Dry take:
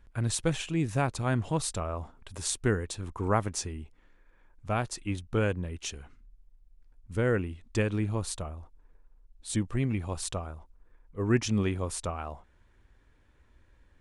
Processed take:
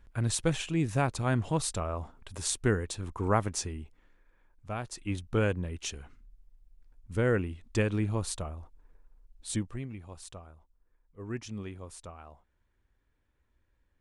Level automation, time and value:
0:03.71 0 dB
0:04.79 −7 dB
0:05.15 0 dB
0:09.49 0 dB
0:09.89 −12 dB

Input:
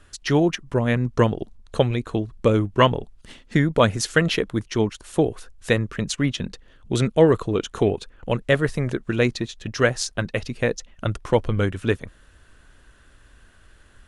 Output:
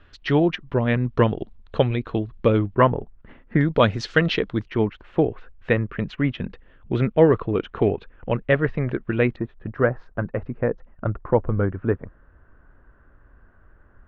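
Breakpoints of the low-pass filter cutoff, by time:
low-pass filter 24 dB per octave
3,600 Hz
from 0:02.75 1,900 Hz
from 0:03.61 4,300 Hz
from 0:04.68 2,600 Hz
from 0:09.36 1,500 Hz

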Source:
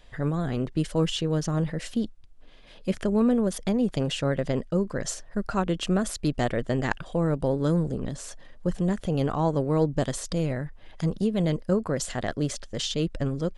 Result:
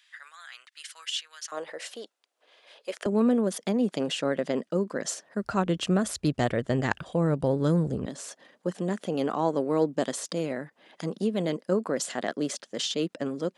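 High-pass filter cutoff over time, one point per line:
high-pass filter 24 dB per octave
1,500 Hz
from 0:01.52 460 Hz
from 0:03.06 200 Hz
from 0:05.43 66 Hz
from 0:08.06 210 Hz

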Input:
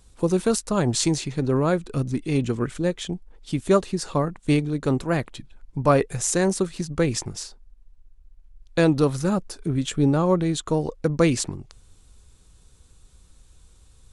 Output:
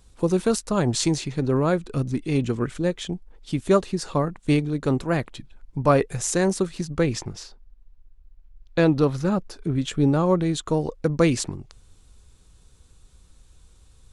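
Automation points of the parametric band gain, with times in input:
parametric band 9,200 Hz 1 octave
0:06.89 −3 dB
0:07.38 −13 dB
0:09.23 −13 dB
0:10.20 −2.5 dB

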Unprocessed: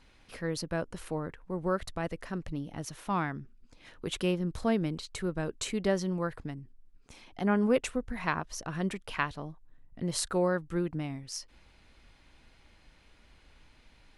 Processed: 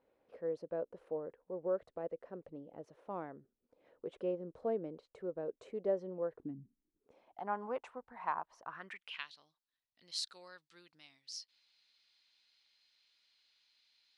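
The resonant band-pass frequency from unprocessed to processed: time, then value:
resonant band-pass, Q 3.3
0:06.31 510 Hz
0:06.60 190 Hz
0:07.44 900 Hz
0:08.61 900 Hz
0:09.30 4,300 Hz

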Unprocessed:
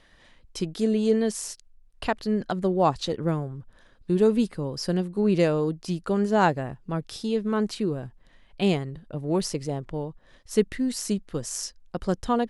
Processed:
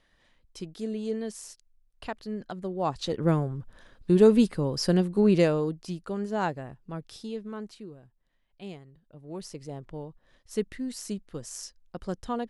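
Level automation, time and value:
0:02.74 −9.5 dB
0:03.31 +2.5 dB
0:05.18 +2.5 dB
0:06.08 −8 dB
0:07.20 −8 dB
0:08.00 −18.5 dB
0:09.02 −18.5 dB
0:09.83 −7.5 dB

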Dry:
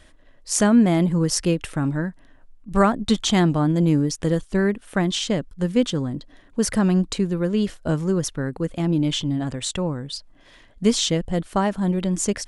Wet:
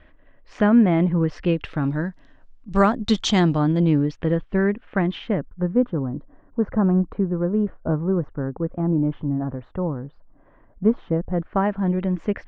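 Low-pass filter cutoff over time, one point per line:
low-pass filter 24 dB per octave
0:01.31 2,600 Hz
0:02.08 6,100 Hz
0:03.37 6,100 Hz
0:04.34 2,600 Hz
0:05.10 2,600 Hz
0:05.78 1,300 Hz
0:11.16 1,300 Hz
0:11.71 2,300 Hz

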